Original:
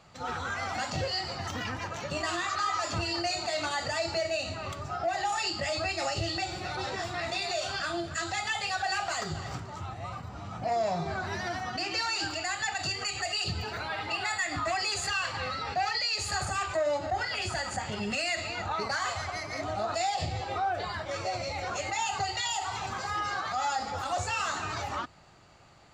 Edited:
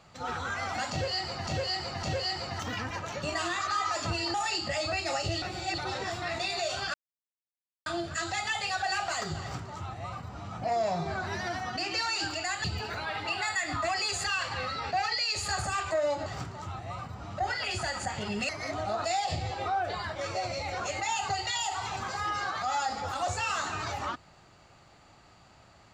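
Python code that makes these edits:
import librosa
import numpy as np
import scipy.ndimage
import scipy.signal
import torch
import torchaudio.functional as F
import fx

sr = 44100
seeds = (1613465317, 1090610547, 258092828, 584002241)

y = fx.edit(x, sr, fx.repeat(start_s=0.91, length_s=0.56, count=3),
    fx.cut(start_s=3.22, length_s=2.04),
    fx.reverse_span(start_s=6.34, length_s=0.36),
    fx.insert_silence(at_s=7.86, length_s=0.92),
    fx.duplicate(start_s=9.4, length_s=1.12, to_s=17.09),
    fx.cut(start_s=12.64, length_s=0.83),
    fx.cut(start_s=18.2, length_s=1.19), tone=tone)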